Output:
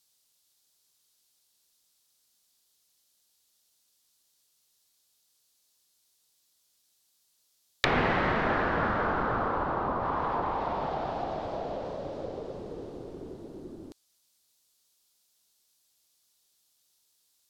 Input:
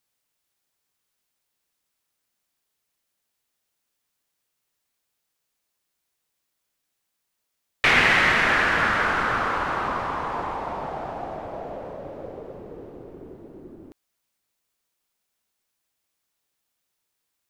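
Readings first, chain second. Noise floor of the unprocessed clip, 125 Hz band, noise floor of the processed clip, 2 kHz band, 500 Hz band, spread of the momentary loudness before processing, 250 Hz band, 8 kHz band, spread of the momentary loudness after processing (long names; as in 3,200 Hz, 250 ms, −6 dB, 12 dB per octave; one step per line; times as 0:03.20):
−79 dBFS, 0.0 dB, −72 dBFS, −12.0 dB, −0.5 dB, 21 LU, 0.0 dB, below −10 dB, 17 LU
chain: high shelf with overshoot 3,000 Hz +9 dB, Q 1.5
treble cut that deepens with the level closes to 980 Hz, closed at −23.5 dBFS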